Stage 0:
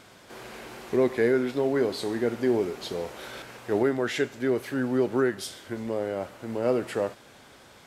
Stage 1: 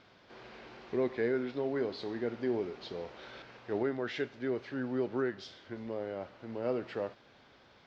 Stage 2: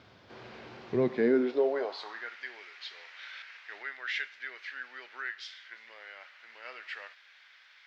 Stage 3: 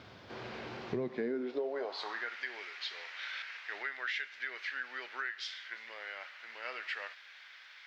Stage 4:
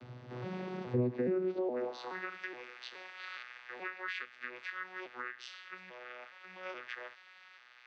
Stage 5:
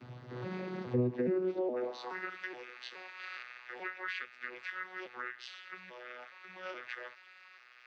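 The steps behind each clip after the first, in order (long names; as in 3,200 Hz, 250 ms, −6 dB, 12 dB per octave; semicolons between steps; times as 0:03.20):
inverse Chebyshev low-pass filter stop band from 9,100 Hz, stop band 40 dB; level −8.5 dB
high-pass filter sweep 82 Hz → 1,900 Hz, 0:00.77–0:02.37; level +2.5 dB
downward compressor 5 to 1, threshold −38 dBFS, peak gain reduction 15.5 dB; level +4 dB
vocoder with an arpeggio as carrier bare fifth, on B2, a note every 421 ms; level +1.5 dB
spectral magnitudes quantised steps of 15 dB; level +1 dB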